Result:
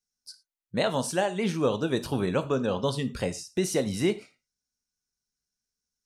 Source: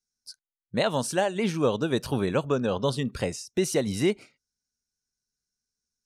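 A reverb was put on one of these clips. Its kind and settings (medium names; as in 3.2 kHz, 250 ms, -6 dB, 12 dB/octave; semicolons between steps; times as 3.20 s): gated-style reverb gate 130 ms falling, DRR 10 dB; trim -1.5 dB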